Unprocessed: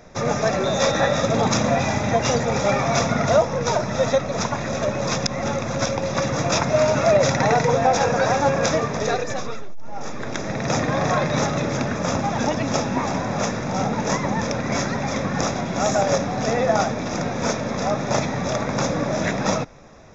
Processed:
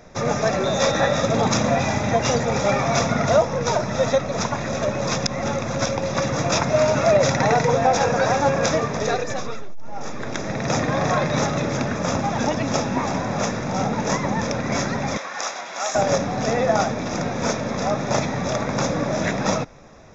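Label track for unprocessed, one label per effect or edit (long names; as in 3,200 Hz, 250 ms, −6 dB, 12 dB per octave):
15.170000	15.950000	high-pass filter 870 Hz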